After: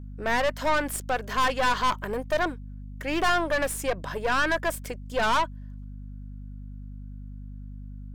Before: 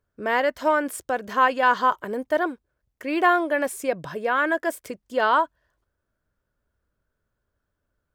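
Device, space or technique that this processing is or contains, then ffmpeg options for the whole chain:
valve amplifier with mains hum: -af "lowshelf=f=400:g=-8,aeval=exprs='(tanh(17.8*val(0)+0.55)-tanh(0.55))/17.8':c=same,aeval=exprs='val(0)+0.00708*(sin(2*PI*50*n/s)+sin(2*PI*2*50*n/s)/2+sin(2*PI*3*50*n/s)/3+sin(2*PI*4*50*n/s)/4+sin(2*PI*5*50*n/s)/5)':c=same,volume=1.78"

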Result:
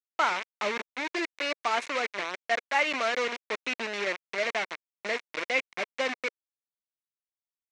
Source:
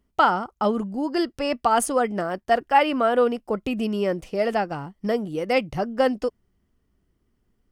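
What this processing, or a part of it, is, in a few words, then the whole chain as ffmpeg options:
hand-held game console: -af "acrusher=bits=3:mix=0:aa=0.000001,highpass=490,equalizer=f=500:t=q:w=4:g=-5,equalizer=f=790:t=q:w=4:g=-9,equalizer=f=1300:t=q:w=4:g=-4,equalizer=f=2200:t=q:w=4:g=8,equalizer=f=3200:t=q:w=4:g=-4,equalizer=f=4800:t=q:w=4:g=-7,lowpass=f=5300:w=0.5412,lowpass=f=5300:w=1.3066,volume=0.668"

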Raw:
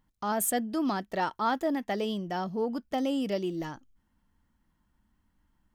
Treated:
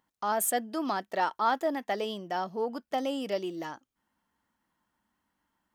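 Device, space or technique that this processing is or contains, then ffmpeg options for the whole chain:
filter by subtraction: -filter_complex "[0:a]asplit=2[s0][s1];[s1]lowpass=710,volume=-1[s2];[s0][s2]amix=inputs=2:normalize=0"

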